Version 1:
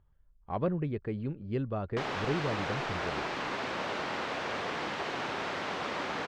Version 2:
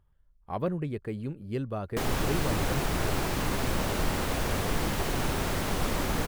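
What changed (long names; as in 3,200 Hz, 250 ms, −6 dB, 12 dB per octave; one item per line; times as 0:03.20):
background: remove meter weighting curve A
master: remove high-frequency loss of the air 170 metres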